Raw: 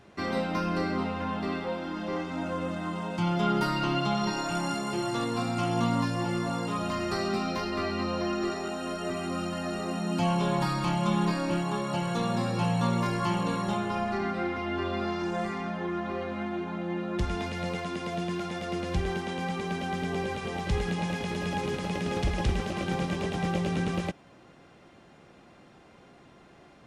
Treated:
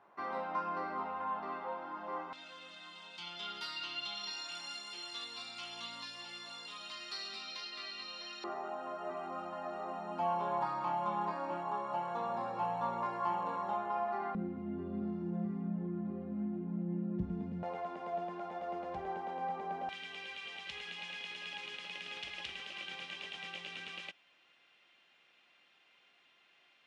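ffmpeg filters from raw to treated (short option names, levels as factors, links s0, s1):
-af "asetnsamples=n=441:p=0,asendcmd='2.33 bandpass f 3700;8.44 bandpass f 870;14.35 bandpass f 190;17.63 bandpass f 760;19.89 bandpass f 2900',bandpass=f=980:t=q:w=2.4:csg=0"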